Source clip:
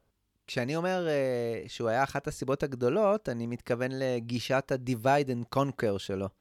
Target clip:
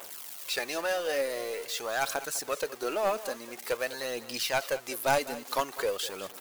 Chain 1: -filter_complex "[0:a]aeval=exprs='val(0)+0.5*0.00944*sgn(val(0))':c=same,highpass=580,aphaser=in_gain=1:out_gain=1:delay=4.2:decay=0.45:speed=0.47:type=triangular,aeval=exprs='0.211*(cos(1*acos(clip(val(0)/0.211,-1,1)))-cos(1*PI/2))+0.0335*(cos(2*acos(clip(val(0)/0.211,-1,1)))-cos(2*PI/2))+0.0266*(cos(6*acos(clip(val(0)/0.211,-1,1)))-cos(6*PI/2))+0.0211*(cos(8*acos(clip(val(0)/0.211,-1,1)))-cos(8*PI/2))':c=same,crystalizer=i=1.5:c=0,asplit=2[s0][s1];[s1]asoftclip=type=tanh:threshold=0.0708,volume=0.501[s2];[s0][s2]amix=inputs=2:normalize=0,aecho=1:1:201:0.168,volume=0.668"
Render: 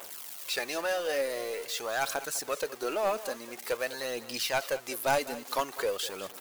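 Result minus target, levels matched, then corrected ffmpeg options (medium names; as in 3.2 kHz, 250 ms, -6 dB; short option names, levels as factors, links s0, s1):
saturation: distortion +16 dB
-filter_complex "[0:a]aeval=exprs='val(0)+0.5*0.00944*sgn(val(0))':c=same,highpass=580,aphaser=in_gain=1:out_gain=1:delay=4.2:decay=0.45:speed=0.47:type=triangular,aeval=exprs='0.211*(cos(1*acos(clip(val(0)/0.211,-1,1)))-cos(1*PI/2))+0.0335*(cos(2*acos(clip(val(0)/0.211,-1,1)))-cos(2*PI/2))+0.0266*(cos(6*acos(clip(val(0)/0.211,-1,1)))-cos(6*PI/2))+0.0211*(cos(8*acos(clip(val(0)/0.211,-1,1)))-cos(8*PI/2))':c=same,crystalizer=i=1.5:c=0,asplit=2[s0][s1];[s1]asoftclip=type=tanh:threshold=0.282,volume=0.501[s2];[s0][s2]amix=inputs=2:normalize=0,aecho=1:1:201:0.168,volume=0.668"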